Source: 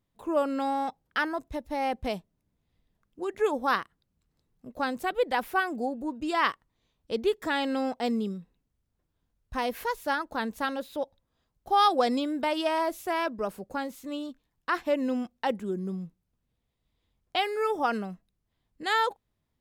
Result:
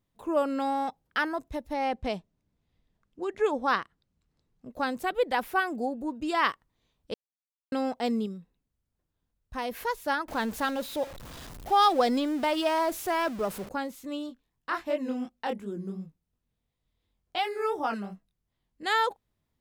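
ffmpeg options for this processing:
ffmpeg -i in.wav -filter_complex "[0:a]asettb=1/sr,asplit=3[link_01][link_02][link_03];[link_01]atrim=end=1.734[link_04];[link_02]atrim=start=1.73:end=4.7,asetpts=PTS-STARTPTS,afade=type=in:duration=0.004:curve=qsin,afade=type=out:start_time=2.966:duration=0.004:curve=qsin,lowpass=7400[link_05];[link_03]atrim=start=4.696[link_06];[link_04][link_05]acrossfade=duration=0.004:curve1=hsin:curve2=qsin[link_07];[link_07][link_06]acrossfade=duration=0.004:curve1=qsin:curve2=hsin,asettb=1/sr,asplit=3[link_08][link_09][link_10];[link_08]atrim=end=10.284[link_11];[link_09]atrim=start=10.28:end=13.69,asetpts=PTS-STARTPTS,afade=type=in:duration=0.004:curve=qsin,afade=type=out:start_time=3.406:duration=0.004:curve=qsin,aeval=exprs='val(0)+0.5*0.0133*sgn(val(0))':channel_layout=same[link_12];[link_10]atrim=start=13.686[link_13];[link_11][link_12]acrossfade=duration=0.004:curve1=hsin:curve2=qsin[link_14];[link_14][link_13]acrossfade=duration=0.004:curve1=qsin:curve2=hsin,asplit=3[link_15][link_16][link_17];[link_15]afade=type=out:start_time=14.29:duration=0.02[link_18];[link_16]flanger=delay=19.5:depth=5.8:speed=2.8,afade=type=in:start_time=14.29:duration=0.02,afade=type=out:start_time=18.84:duration=0.02[link_19];[link_17]afade=type=in:start_time=18.84:duration=0.02[link_20];[link_18][link_19][link_20]amix=inputs=3:normalize=0,asplit=5[link_21][link_22][link_23][link_24][link_25];[link_21]atrim=end=7.14,asetpts=PTS-STARTPTS,afade=type=out:start_time=7.136:duration=0.004:curve=hsin[link_26];[link_22]atrim=start=7.14:end=7.72,asetpts=PTS-STARTPTS,volume=0[link_27];[link_23]atrim=start=7.72:end=8.262,asetpts=PTS-STARTPTS,afade=type=in:duration=0.004:curve=hsin[link_28];[link_24]atrim=start=8.258:end=9.712,asetpts=PTS-STARTPTS,volume=-3.5dB[link_29];[link_25]atrim=start=9.708[link_30];[link_26][link_27][link_28]concat=n=3:v=0:a=1[link_31];[link_31][link_29]acrossfade=duration=0.004:curve1=hsin:curve2=hsin[link_32];[link_32][link_30]acrossfade=duration=0.004:curve1=hsin:curve2=hsin" out.wav

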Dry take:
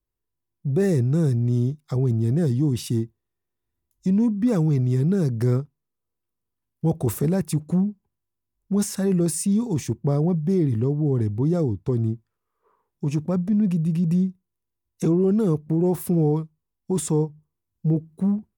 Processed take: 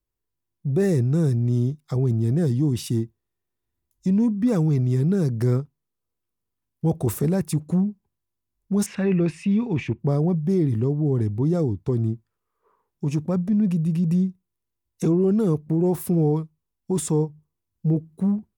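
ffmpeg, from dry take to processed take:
ffmpeg -i in.wav -filter_complex "[0:a]asettb=1/sr,asplit=3[link_01][link_02][link_03];[link_01]atrim=end=8.864[link_04];[link_02]atrim=start=8.86:end=10,asetpts=PTS-STARTPTS,afade=type=in:duration=0.004:curve=qsin,afade=type=out:start_time=1.136:duration=0.004:curve=qsin,lowpass=frequency=2500:width_type=q:width=4.1[link_05];[link_03]atrim=start=9.996[link_06];[link_04][link_05]acrossfade=duration=0.004:curve1=hsin:curve2=qsin[link_07];[link_07][link_06]acrossfade=duration=0.004:curve1=qsin:curve2=hsin" out.wav

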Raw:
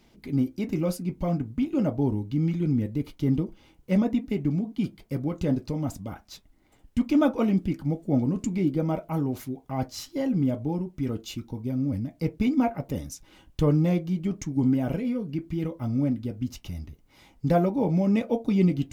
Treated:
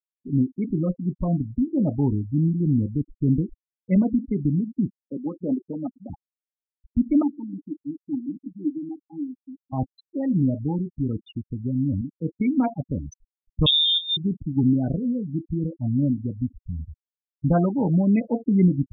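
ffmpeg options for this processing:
ffmpeg -i in.wav -filter_complex "[0:a]asettb=1/sr,asplit=3[link_01][link_02][link_03];[link_01]atrim=end=4.994[link_04];[link_02]atrim=start=4.99:end=6.1,asetpts=PTS-STARTPTS,afade=type=in:duration=0.004:curve=qsin,afade=type=out:start_time=1.106:duration=0.004:curve=qsin,highpass=frequency=220:width=0.5412,highpass=frequency=220:width=1.3066[link_05];[link_03]atrim=start=6.096[link_06];[link_04][link_05]acrossfade=duration=0.004:curve1=hsin:curve2=qsin[link_07];[link_07][link_06]acrossfade=duration=0.004:curve1=qsin:curve2=hsin,asettb=1/sr,asplit=3[link_08][link_09][link_10];[link_08]atrim=end=7.224[link_11];[link_09]atrim=start=7.22:end=9.73,asetpts=PTS-STARTPTS,afade=type=in:duration=0.004:curve=qsin,afade=type=out:start_time=2.506:duration=0.004:curve=qsin,asplit=3[link_12][link_13][link_14];[link_12]bandpass=frequency=300:width_type=q:width=8,volume=0dB[link_15];[link_13]bandpass=frequency=870:width_type=q:width=8,volume=-6dB[link_16];[link_14]bandpass=frequency=2240:width_type=q:width=8,volume=-9dB[link_17];[link_15][link_16][link_17]amix=inputs=3:normalize=0[link_18];[link_10]atrim=start=9.726[link_19];[link_11][link_18]acrossfade=duration=0.004:curve1=hsin:curve2=qsin[link_20];[link_20][link_19]acrossfade=duration=0.004:curve1=qsin:curve2=hsin,asettb=1/sr,asplit=3[link_21][link_22][link_23];[link_21]atrim=end=12.014[link_24];[link_22]atrim=start=12.01:end=12.7,asetpts=PTS-STARTPTS,afade=type=in:duration=0.004:curve=qsin,afade=type=out:start_time=0.686:duration=0.004:curve=qsin,highpass=190,lowpass=3900[link_25];[link_23]atrim=start=12.696[link_26];[link_24][link_25]acrossfade=duration=0.004:curve1=hsin:curve2=qsin[link_27];[link_27][link_26]acrossfade=duration=0.004:curve1=qsin:curve2=hsin,asettb=1/sr,asplit=3[link_28][link_29][link_30];[link_28]atrim=end=13.664[link_31];[link_29]atrim=start=13.66:end=14.17,asetpts=PTS-STARTPTS,afade=type=in:duration=0.004:curve=qsin,afade=type=out:start_time=0.506:duration=0.004:curve=qsin,lowpass=frequency=3200:width_type=q:width=0.5098,lowpass=frequency=3200:width_type=q:width=0.6013,lowpass=frequency=3200:width_type=q:width=0.9,lowpass=frequency=3200:width_type=q:width=2.563,afreqshift=-3800[link_32];[link_30]atrim=start=14.166[link_33];[link_31][link_32]acrossfade=duration=0.004:curve1=hsin:curve2=qsin[link_34];[link_34][link_33]acrossfade=duration=0.004:curve1=qsin:curve2=hsin,aemphasis=mode=reproduction:type=cd,afftfilt=real='re*gte(hypot(re,im),0.0562)':imag='im*gte(hypot(re,im),0.0562)':win_size=1024:overlap=0.75,equalizer=frequency=520:width=1.1:gain=-7,volume=4.5dB" out.wav

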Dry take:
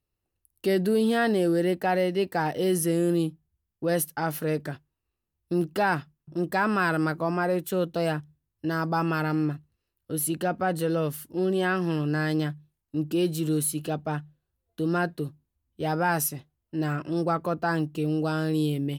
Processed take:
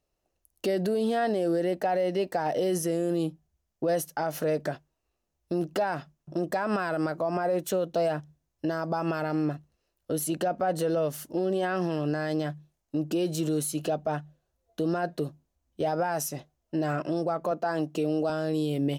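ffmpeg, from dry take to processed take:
ffmpeg -i in.wav -filter_complex "[0:a]asettb=1/sr,asplit=3[link_01][link_02][link_03];[link_01]atrim=end=17.514[link_04];[link_02]atrim=start=17.51:end=18.3,asetpts=PTS-STARTPTS,afade=type=in:duration=0.004:curve=qsin,afade=type=out:start_time=0.786:duration=0.004:curve=qsin,highpass=170[link_05];[link_03]atrim=start=18.296[link_06];[link_04][link_05]acrossfade=duration=0.004:curve1=hsin:curve2=qsin[link_07];[link_07][link_06]acrossfade=duration=0.004:curve1=qsin:curve2=hsin,equalizer=frequency=100:width_type=o:width=0.67:gain=-9,equalizer=frequency=630:width_type=o:width=0.67:gain=11,equalizer=frequency=6300:width_type=o:width=0.67:gain=8,alimiter=limit=-22.5dB:level=0:latency=1:release=149,highshelf=frequency=7500:gain=-6,volume=3.5dB" out.wav

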